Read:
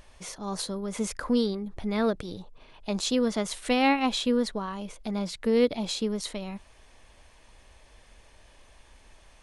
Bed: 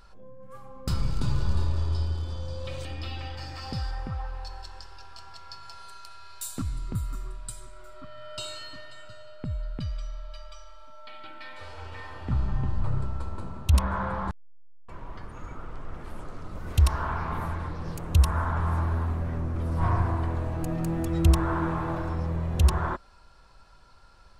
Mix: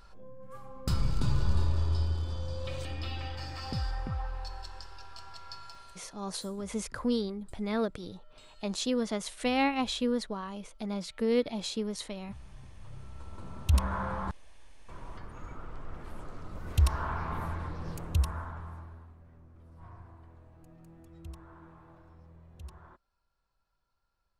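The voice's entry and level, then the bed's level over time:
5.75 s, -4.5 dB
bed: 5.61 s -1.5 dB
6.53 s -22.5 dB
12.77 s -22.5 dB
13.59 s -4 dB
18.01 s -4 dB
19.15 s -25.5 dB

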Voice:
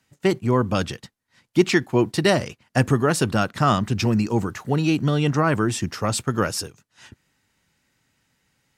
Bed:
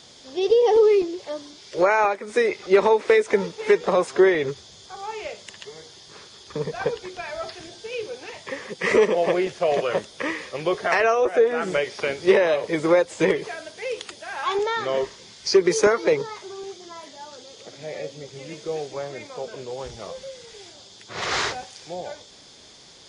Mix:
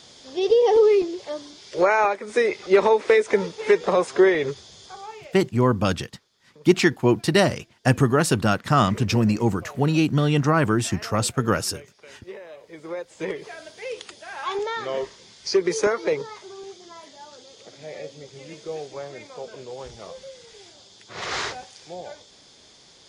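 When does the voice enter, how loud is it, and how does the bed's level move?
5.10 s, +0.5 dB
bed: 4.88 s 0 dB
5.70 s -22.5 dB
12.45 s -22.5 dB
13.64 s -3.5 dB

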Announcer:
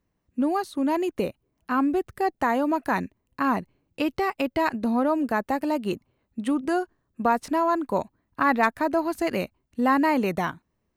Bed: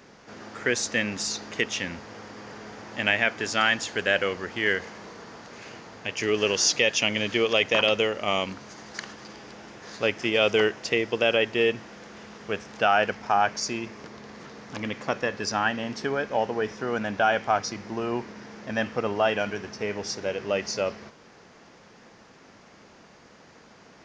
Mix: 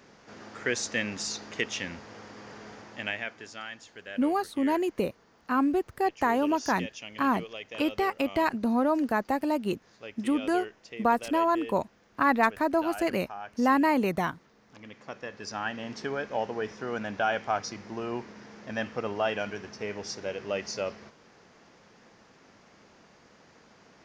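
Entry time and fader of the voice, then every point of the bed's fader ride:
3.80 s, -2.0 dB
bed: 2.73 s -4 dB
3.66 s -18.5 dB
14.56 s -18.5 dB
15.95 s -5 dB

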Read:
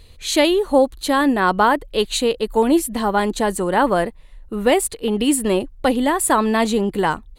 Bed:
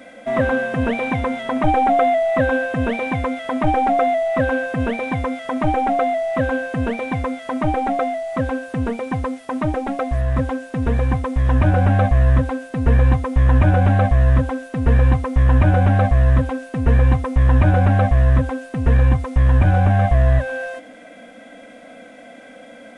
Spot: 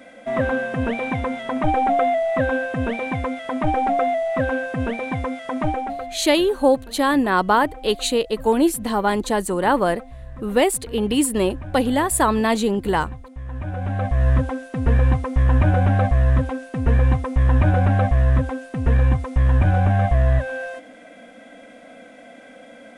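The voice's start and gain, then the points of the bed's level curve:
5.90 s, -1.5 dB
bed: 5.65 s -3 dB
6.27 s -19 dB
13.45 s -19 dB
14.27 s -2.5 dB

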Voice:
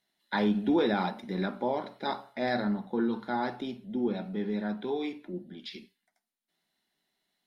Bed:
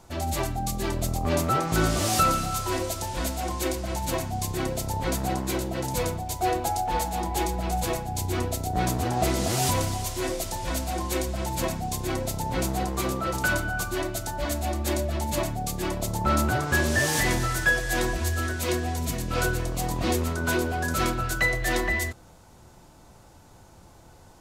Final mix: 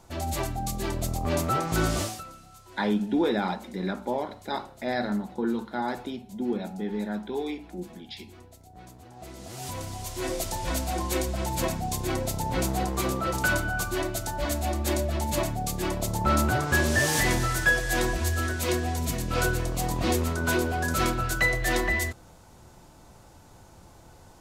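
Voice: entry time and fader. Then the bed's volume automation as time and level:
2.45 s, +1.0 dB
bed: 2.01 s -2 dB
2.24 s -22.5 dB
9.08 s -22.5 dB
10.38 s 0 dB

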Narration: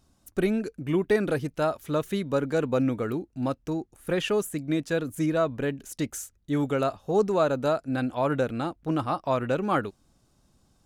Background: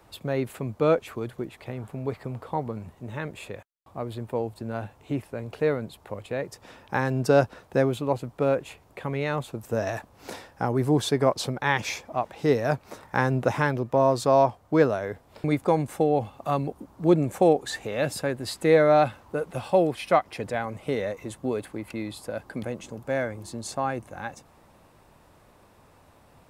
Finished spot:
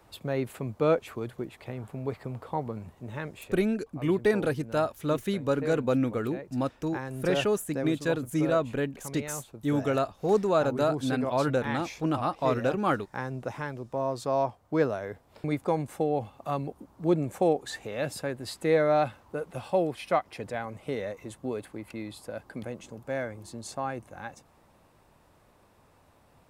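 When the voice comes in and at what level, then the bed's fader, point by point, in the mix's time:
3.15 s, -1.0 dB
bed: 3.17 s -2.5 dB
3.85 s -11 dB
13.71 s -11 dB
14.86 s -5 dB

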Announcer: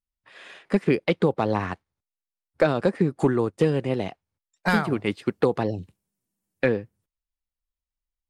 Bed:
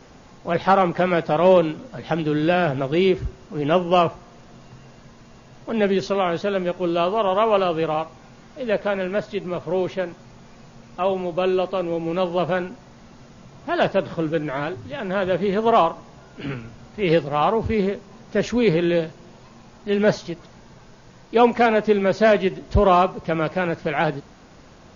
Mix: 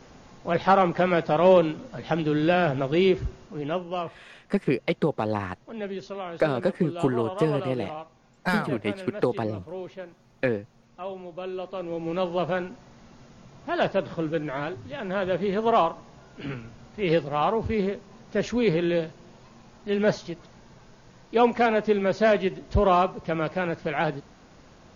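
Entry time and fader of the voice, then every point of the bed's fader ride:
3.80 s, -3.0 dB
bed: 3.36 s -2.5 dB
3.92 s -13.5 dB
11.51 s -13.5 dB
12.09 s -4.5 dB

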